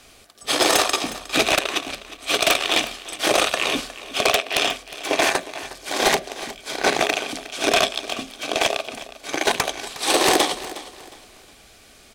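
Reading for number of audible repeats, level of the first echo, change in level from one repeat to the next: 2, -16.0 dB, -10.0 dB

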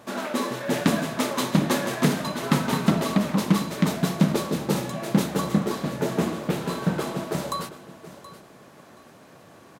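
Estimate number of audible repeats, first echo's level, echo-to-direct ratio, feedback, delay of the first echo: 2, -16.0 dB, -16.0 dB, 21%, 0.725 s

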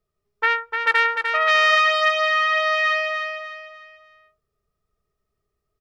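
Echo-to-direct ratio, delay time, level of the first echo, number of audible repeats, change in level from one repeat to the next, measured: -5.5 dB, 0.3 s, -6.0 dB, 4, -9.0 dB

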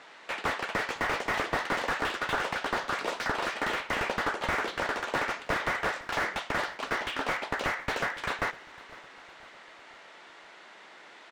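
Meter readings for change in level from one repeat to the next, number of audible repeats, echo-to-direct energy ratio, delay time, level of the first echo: -6.0 dB, 3, -18.5 dB, 0.506 s, -20.0 dB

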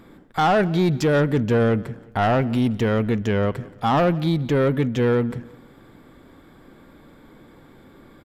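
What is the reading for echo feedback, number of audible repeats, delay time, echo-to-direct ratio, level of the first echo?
38%, 2, 0.176 s, -20.5 dB, -21.0 dB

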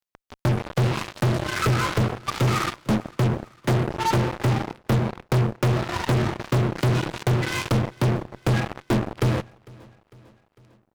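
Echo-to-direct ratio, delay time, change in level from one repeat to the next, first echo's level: -22.5 dB, 0.451 s, -4.5 dB, -24.0 dB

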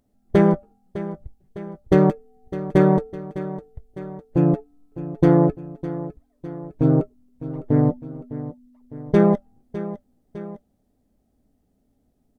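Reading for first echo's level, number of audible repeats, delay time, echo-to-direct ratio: -14.0 dB, 2, 0.606 s, -13.0 dB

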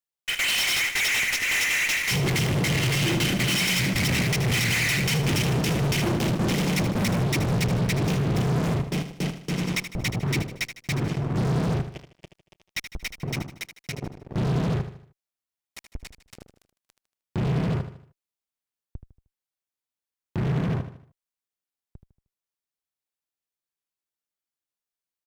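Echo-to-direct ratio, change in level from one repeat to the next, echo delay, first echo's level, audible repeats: -9.5 dB, -7.5 dB, 77 ms, -10.5 dB, 4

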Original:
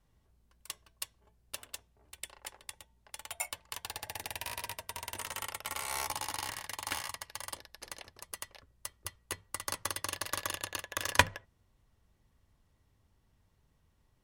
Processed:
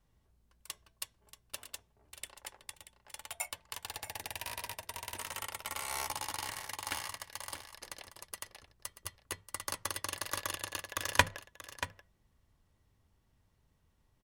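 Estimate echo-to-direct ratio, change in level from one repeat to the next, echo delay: -12.5 dB, no steady repeat, 0.633 s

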